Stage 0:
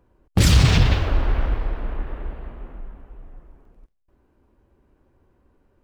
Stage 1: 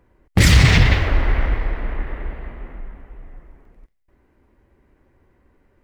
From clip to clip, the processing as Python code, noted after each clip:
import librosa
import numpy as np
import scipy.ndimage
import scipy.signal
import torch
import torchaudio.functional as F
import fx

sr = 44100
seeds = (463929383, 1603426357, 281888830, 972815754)

y = fx.peak_eq(x, sr, hz=2000.0, db=11.0, octaves=0.4)
y = F.gain(torch.from_numpy(y), 2.5).numpy()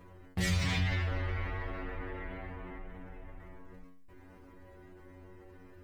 y = fx.stiff_resonator(x, sr, f0_hz=90.0, decay_s=0.56, stiffness=0.002)
y = fx.env_flatten(y, sr, amount_pct=50)
y = F.gain(torch.from_numpy(y), -8.0).numpy()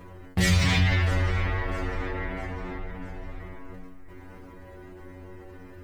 y = fx.echo_feedback(x, sr, ms=654, feedback_pct=47, wet_db=-17.5)
y = F.gain(torch.from_numpy(y), 9.0).numpy()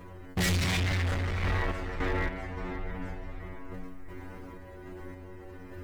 y = np.clip(x, -10.0 ** (-26.5 / 20.0), 10.0 ** (-26.5 / 20.0))
y = fx.tremolo_random(y, sr, seeds[0], hz=3.5, depth_pct=55)
y = F.gain(torch.from_numpy(y), 3.0).numpy()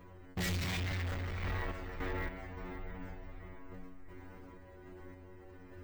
y = np.repeat(scipy.signal.resample_poly(x, 1, 2), 2)[:len(x)]
y = F.gain(torch.from_numpy(y), -8.0).numpy()